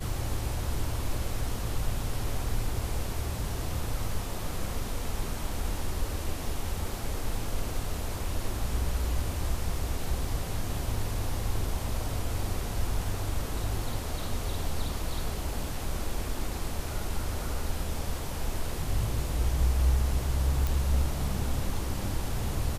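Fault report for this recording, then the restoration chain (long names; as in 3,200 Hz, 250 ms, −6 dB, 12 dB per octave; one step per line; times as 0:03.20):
0:20.67: click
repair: click removal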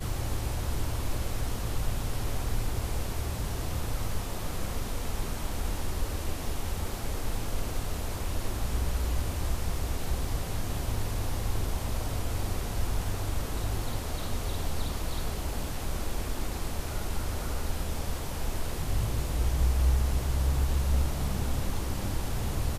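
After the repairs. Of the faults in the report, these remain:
none of them is left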